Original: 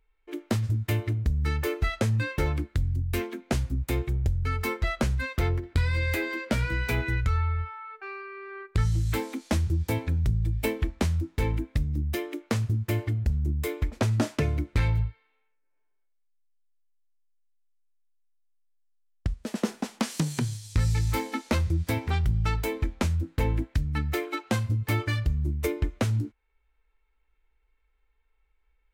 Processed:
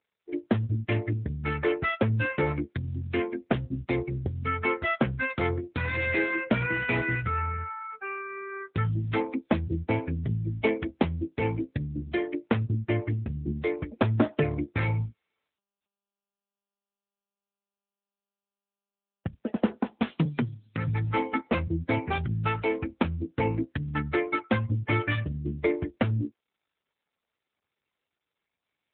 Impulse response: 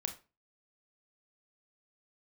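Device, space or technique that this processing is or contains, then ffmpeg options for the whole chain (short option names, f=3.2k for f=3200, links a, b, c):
mobile call with aggressive noise cancelling: -filter_complex "[0:a]asettb=1/sr,asplit=3[a][b][c];[a]atrim=end=20.254[d];[b]atrim=start=20.25:end=20.88,asetpts=PTS-STARTPTS,afade=t=in:d=0.004:c=qsin,afade=t=out:st=0.626:d=0.004:c=qsin,highpass=f=120:w=0.5412,highpass=f=120:w=1.3066[e];[c]atrim=start=20.876[f];[d][e]acrossfade=d=0.004:c1=hsin:c2=qsin[g];[g][f]acrossfade=d=0.004:c1=qsin:c2=hsin,highpass=f=170:p=1,afftdn=nr=24:nf=-41,volume=5dB" -ar 8000 -c:a libopencore_amrnb -b:a 10200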